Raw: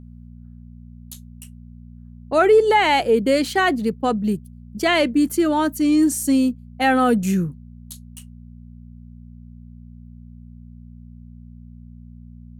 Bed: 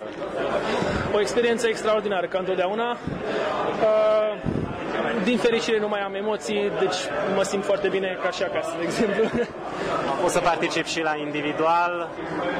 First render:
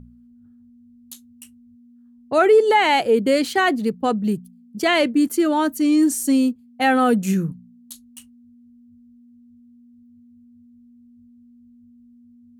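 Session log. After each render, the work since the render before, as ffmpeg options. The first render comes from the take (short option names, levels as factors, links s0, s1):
-af "bandreject=f=60:t=h:w=4,bandreject=f=120:t=h:w=4,bandreject=f=180:t=h:w=4"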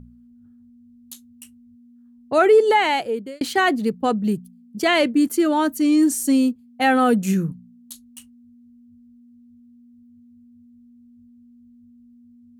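-filter_complex "[0:a]asplit=2[s0][s1];[s0]atrim=end=3.41,asetpts=PTS-STARTPTS,afade=t=out:st=2.69:d=0.72[s2];[s1]atrim=start=3.41,asetpts=PTS-STARTPTS,afade=t=in:d=0.004:c=hsin[s3];[s2][s3]concat=n=2:v=0:a=1"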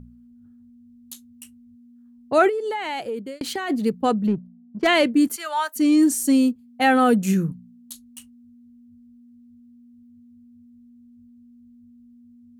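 -filter_complex "[0:a]asplit=3[s0][s1][s2];[s0]afade=t=out:st=2.48:d=0.02[s3];[s1]acompressor=threshold=0.0631:ratio=8:attack=3.2:release=140:knee=1:detection=peak,afade=t=in:st=2.48:d=0.02,afade=t=out:st=3.69:d=0.02[s4];[s2]afade=t=in:st=3.69:d=0.02[s5];[s3][s4][s5]amix=inputs=3:normalize=0,asplit=3[s6][s7][s8];[s6]afade=t=out:st=4.26:d=0.02[s9];[s7]adynamicsmooth=sensitivity=2:basefreq=710,afade=t=in:st=4.26:d=0.02,afade=t=out:st=4.86:d=0.02[s10];[s8]afade=t=in:st=4.86:d=0.02[s11];[s9][s10][s11]amix=inputs=3:normalize=0,asettb=1/sr,asplit=3[s12][s13][s14];[s12]atrim=end=5.364[s15];[s13]atrim=start=5.36:end=5.76,asetpts=PTS-STARTPTS,afade=t=in:d=0.004:c=qsin,afade=t=out:st=0.396:d=0.004:c=qsin,highpass=f=770:w=0.5412,highpass=f=770:w=1.3066[s16];[s14]atrim=start=5.756[s17];[s15][s16]acrossfade=d=0.004:c1=hsin:c2=qsin[s18];[s18][s17]acrossfade=d=0.004:c1=qsin:c2=hsin"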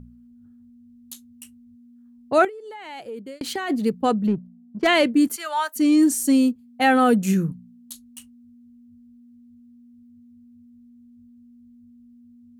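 -filter_complex "[0:a]asplit=2[s0][s1];[s0]atrim=end=2.45,asetpts=PTS-STARTPTS,afade=t=out:st=2.446:d=0.004:c=hsin:silence=0.223872[s2];[s1]atrim=start=2.45,asetpts=PTS-STARTPTS,afade=t=in:d=1.07:c=qua:silence=0.223872[s3];[s2][s3]concat=n=2:v=0:a=1"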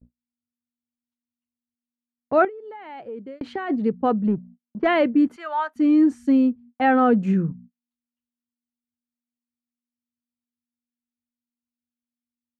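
-af "lowpass=1700,agate=range=0.00708:threshold=0.00794:ratio=16:detection=peak"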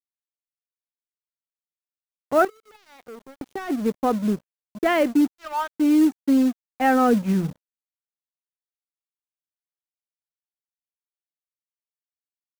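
-af "acrusher=bits=6:mode=log:mix=0:aa=0.000001,aeval=exprs='sgn(val(0))*max(abs(val(0))-0.015,0)':c=same"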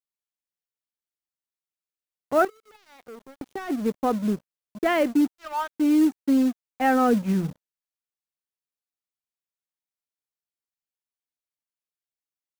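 -af "volume=0.794"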